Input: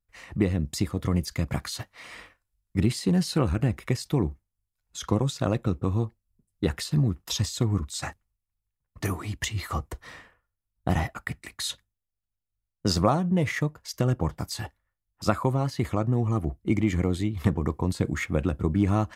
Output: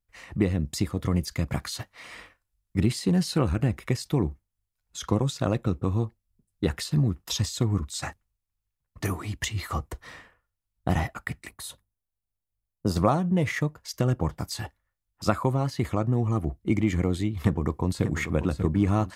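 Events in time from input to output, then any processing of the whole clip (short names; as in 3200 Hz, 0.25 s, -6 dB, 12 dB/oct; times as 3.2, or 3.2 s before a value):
11.49–12.96 band shelf 3300 Hz -11 dB 2.6 oct
17.39–18.08 echo throw 0.59 s, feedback 50%, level -9.5 dB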